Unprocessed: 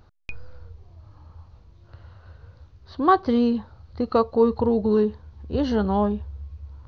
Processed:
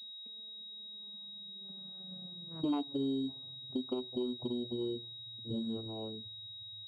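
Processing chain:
vocoder with a gliding carrier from G3, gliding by −9 semitones
source passing by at 0:02.62, 45 m/s, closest 9.9 metres
tilt shelving filter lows +8 dB
downward compressor 6 to 1, threshold −35 dBFS, peak gain reduction 22.5 dB
switching amplifier with a slow clock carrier 3,800 Hz
level +2 dB

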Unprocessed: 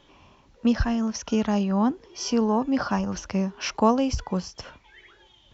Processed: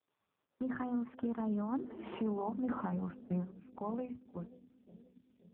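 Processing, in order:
source passing by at 0:01.86, 24 m/s, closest 2.7 metres
Chebyshev band-pass filter 180–1,500 Hz, order 2
mains-hum notches 50/100/150/200/250/300/350 Hz
noise gate −56 dBFS, range −22 dB
downward compressor 6 to 1, threshold −41 dBFS, peak gain reduction 16.5 dB
brickwall limiter −40.5 dBFS, peak gain reduction 8 dB
automatic gain control gain up to 4 dB
bucket-brigade delay 527 ms, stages 2,048, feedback 60%, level −17.5 dB
level +9 dB
AMR narrowband 4.75 kbit/s 8,000 Hz

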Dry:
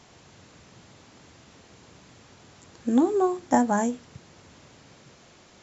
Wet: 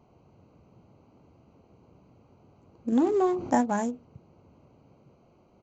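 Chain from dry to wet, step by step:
adaptive Wiener filter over 25 samples
downsampling to 16,000 Hz
0:02.92–0:03.61: envelope flattener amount 50%
level −3.5 dB

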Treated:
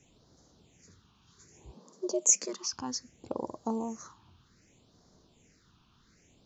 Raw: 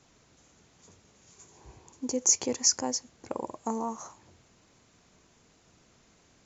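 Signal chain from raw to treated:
0:01.74–0:02.73: frequency shifter +110 Hz
all-pass phaser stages 6, 0.64 Hz, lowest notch 520–2,500 Hz

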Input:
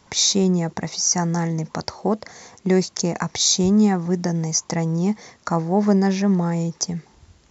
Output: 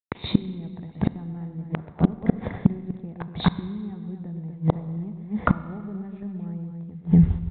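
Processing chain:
downward compressor 4 to 1, threshold −23 dBFS, peak gain reduction 9 dB
spectral tilt −2 dB per octave
noise gate −42 dBFS, range −59 dB
low-shelf EQ 320 Hz +11.5 dB
loudspeakers that aren't time-aligned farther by 42 metres −10 dB, 83 metres −7 dB
gate with flip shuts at −12 dBFS, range −30 dB
four-comb reverb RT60 1.6 s, combs from 32 ms, DRR 15.5 dB
level +8 dB
G.726 40 kbit/s 8,000 Hz

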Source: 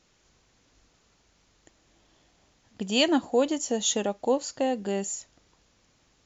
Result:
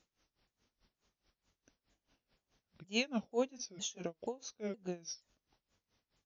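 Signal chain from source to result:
pitch shifter swept by a sawtooth −5 semitones, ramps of 474 ms
tremolo with a sine in dB 4.7 Hz, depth 21 dB
level −8 dB

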